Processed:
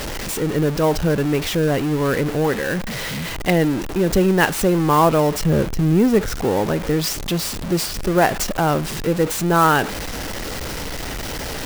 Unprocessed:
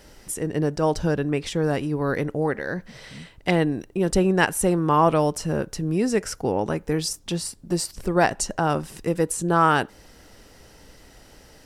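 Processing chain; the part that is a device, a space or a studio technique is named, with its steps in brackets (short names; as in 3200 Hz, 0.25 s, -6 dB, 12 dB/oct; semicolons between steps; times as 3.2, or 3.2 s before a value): 5.41–6.35 tilt -2 dB/oct; Bessel low-pass 7900 Hz, order 8; early CD player with a faulty converter (zero-crossing step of -24 dBFS; clock jitter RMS 0.02 ms); gain +2 dB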